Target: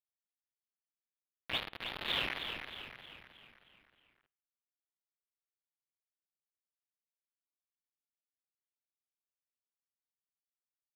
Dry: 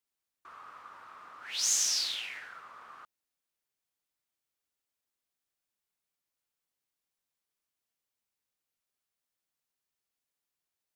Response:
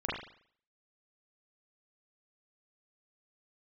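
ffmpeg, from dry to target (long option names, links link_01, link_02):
-filter_complex "[0:a]highpass=43,bandreject=frequency=60:width_type=h:width=6,bandreject=frequency=120:width_type=h:width=6,bandreject=frequency=180:width_type=h:width=6,bandreject=frequency=240:width_type=h:width=6,bandreject=frequency=300:width_type=h:width=6,bandreject=frequency=360:width_type=h:width=6,bandreject=frequency=420:width_type=h:width=6,bandreject=frequency=480:width_type=h:width=6,bandreject=frequency=540:width_type=h:width=6,bandreject=frequency=600:width_type=h:width=6,aresample=8000,acrusher=bits=5:mix=0:aa=0.000001,aresample=44100,aeval=exprs='sgn(val(0))*max(abs(val(0))-0.00224,0)':channel_layout=same,asplit=7[link_01][link_02][link_03][link_04][link_05][link_06][link_07];[link_02]adelay=313,afreqshift=-69,volume=-7dB[link_08];[link_03]adelay=626,afreqshift=-138,volume=-13.2dB[link_09];[link_04]adelay=939,afreqshift=-207,volume=-19.4dB[link_10];[link_05]adelay=1252,afreqshift=-276,volume=-25.6dB[link_11];[link_06]adelay=1565,afreqshift=-345,volume=-31.8dB[link_12];[link_07]adelay=1878,afreqshift=-414,volume=-38dB[link_13];[link_01][link_08][link_09][link_10][link_11][link_12][link_13]amix=inputs=7:normalize=0,asplit=2[link_14][link_15];[1:a]atrim=start_sample=2205[link_16];[link_15][link_16]afir=irnorm=-1:irlink=0,volume=-27dB[link_17];[link_14][link_17]amix=inputs=2:normalize=0,volume=3.5dB"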